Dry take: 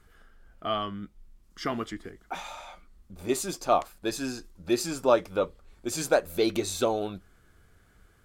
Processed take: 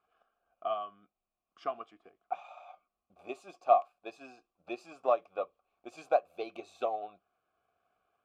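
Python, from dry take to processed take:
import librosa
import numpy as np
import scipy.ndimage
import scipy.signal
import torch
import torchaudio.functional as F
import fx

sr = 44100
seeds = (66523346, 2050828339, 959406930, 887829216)

y = fx.vowel_filter(x, sr, vowel='a')
y = fx.transient(y, sr, attack_db=5, sustain_db=-2)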